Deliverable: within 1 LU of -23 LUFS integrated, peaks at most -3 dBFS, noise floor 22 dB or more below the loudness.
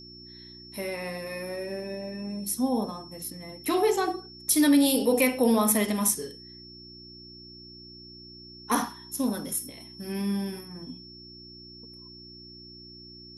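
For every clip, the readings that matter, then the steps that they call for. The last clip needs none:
hum 60 Hz; highest harmonic 360 Hz; hum level -47 dBFS; steady tone 5.4 kHz; tone level -46 dBFS; loudness -27.0 LUFS; peak level -10.0 dBFS; loudness target -23.0 LUFS
-> de-hum 60 Hz, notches 6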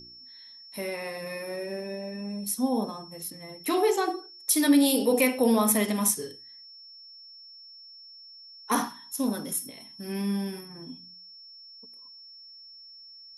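hum not found; steady tone 5.4 kHz; tone level -46 dBFS
-> band-stop 5.4 kHz, Q 30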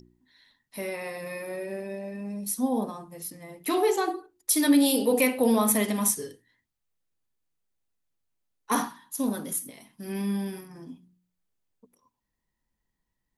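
steady tone not found; loudness -27.0 LUFS; peak level -9.5 dBFS; loudness target -23.0 LUFS
-> trim +4 dB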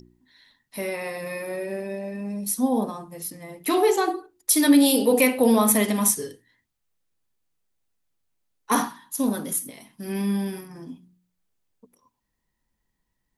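loudness -23.0 LUFS; peak level -5.5 dBFS; noise floor -78 dBFS

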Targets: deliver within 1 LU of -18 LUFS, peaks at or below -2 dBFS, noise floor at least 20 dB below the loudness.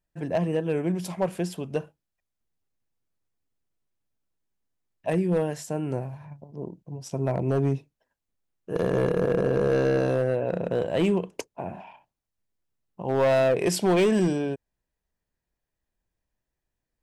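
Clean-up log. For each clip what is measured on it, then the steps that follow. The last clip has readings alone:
clipped samples 1.1%; clipping level -16.5 dBFS; loudness -26.0 LUFS; peak level -16.5 dBFS; loudness target -18.0 LUFS
-> clip repair -16.5 dBFS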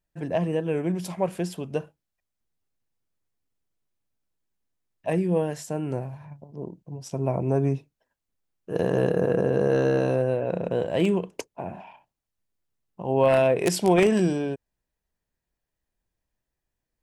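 clipped samples 0.0%; loudness -25.0 LUFS; peak level -7.5 dBFS; loudness target -18.0 LUFS
-> trim +7 dB; peak limiter -2 dBFS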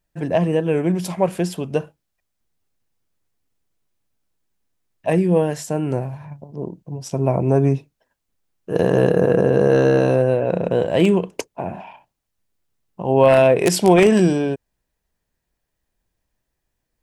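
loudness -18.0 LUFS; peak level -2.0 dBFS; noise floor -77 dBFS

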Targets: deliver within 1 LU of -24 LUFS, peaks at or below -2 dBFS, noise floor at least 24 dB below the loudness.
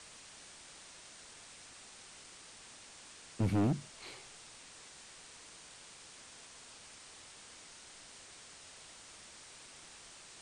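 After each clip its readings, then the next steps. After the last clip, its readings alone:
clipped samples 0.5%; clipping level -26.0 dBFS; noise floor -55 dBFS; noise floor target -69 dBFS; loudness -44.5 LUFS; peak level -26.0 dBFS; loudness target -24.0 LUFS
-> clip repair -26 dBFS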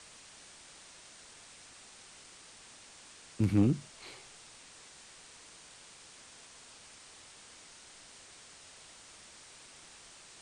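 clipped samples 0.0%; noise floor -55 dBFS; noise floor target -56 dBFS
-> noise reduction 6 dB, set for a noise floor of -55 dBFS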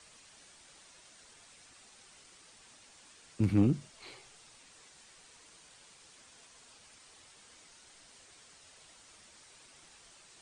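noise floor -59 dBFS; loudness -31.5 LUFS; peak level -17.0 dBFS; loudness target -24.0 LUFS
-> trim +7.5 dB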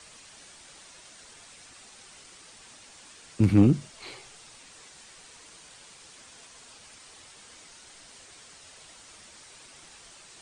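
loudness -24.0 LUFS; peak level -9.5 dBFS; noise floor -51 dBFS

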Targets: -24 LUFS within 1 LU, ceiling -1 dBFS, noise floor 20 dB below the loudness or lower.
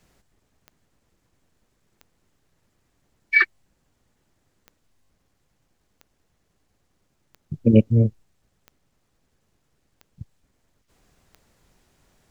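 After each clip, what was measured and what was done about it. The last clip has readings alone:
clicks found 9; loudness -19.5 LUFS; peak level -3.5 dBFS; loudness target -24.0 LUFS
-> de-click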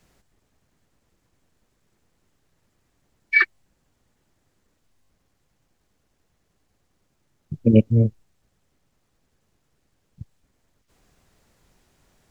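clicks found 0; loudness -19.5 LUFS; peak level -3.5 dBFS; loudness target -24.0 LUFS
-> trim -4.5 dB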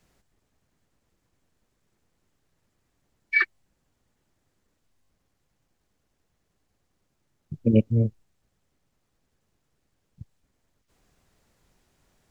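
loudness -24.0 LUFS; peak level -8.0 dBFS; noise floor -75 dBFS

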